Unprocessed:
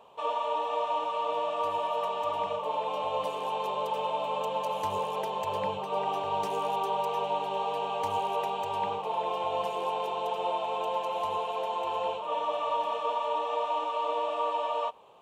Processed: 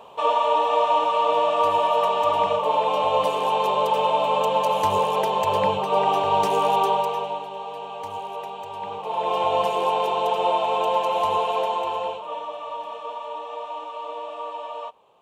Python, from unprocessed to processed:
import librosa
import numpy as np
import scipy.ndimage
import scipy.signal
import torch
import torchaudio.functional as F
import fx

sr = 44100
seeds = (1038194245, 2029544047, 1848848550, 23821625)

y = fx.gain(x, sr, db=fx.line((6.86, 10.0), (7.51, -2.5), (8.8, -2.5), (9.37, 9.0), (11.59, 9.0), (12.55, -3.0)))